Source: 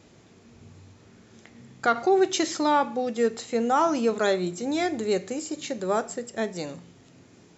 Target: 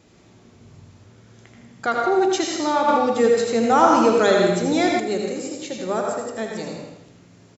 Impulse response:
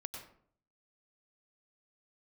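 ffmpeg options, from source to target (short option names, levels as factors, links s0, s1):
-filter_complex "[0:a]aecho=1:1:80|160|240|320|400|480:0.447|0.232|0.121|0.0628|0.0327|0.017[s0];[1:a]atrim=start_sample=2205[s1];[s0][s1]afir=irnorm=-1:irlink=0,asettb=1/sr,asplit=3[s2][s3][s4];[s2]atrim=end=2.884[s5];[s3]atrim=start=2.88:end=5,asetpts=PTS-STARTPTS,afade=t=in:d=0.004:c=qsin,afade=t=out:st=2.116:d=0.004:c=qsin,acontrast=38[s6];[s4]atrim=start=4.996[s7];[s5][s6]acrossfade=d=0.004:c1=hsin:c2=qsin[s8];[s8][s7]acrossfade=d=0.004:c1=qsin:c2=hsin,volume=1.5"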